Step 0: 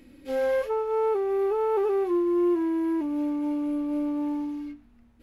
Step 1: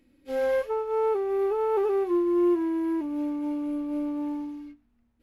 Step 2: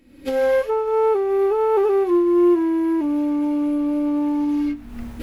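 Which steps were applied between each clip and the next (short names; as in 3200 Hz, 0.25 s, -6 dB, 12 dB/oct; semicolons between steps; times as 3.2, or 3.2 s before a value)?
upward expander 1.5:1, over -46 dBFS; gain +1 dB
recorder AGC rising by 54 dB/s; gain +7 dB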